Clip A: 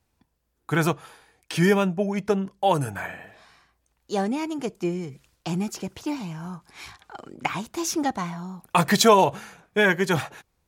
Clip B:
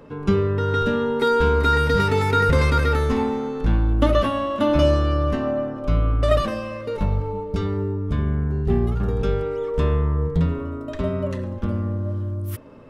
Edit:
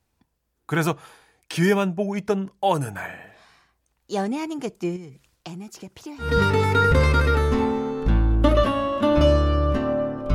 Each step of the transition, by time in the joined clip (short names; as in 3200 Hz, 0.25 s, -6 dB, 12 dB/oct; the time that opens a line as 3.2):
clip A
4.96–6.36 compressor 3:1, threshold -37 dBFS
6.27 switch to clip B from 1.85 s, crossfade 0.18 s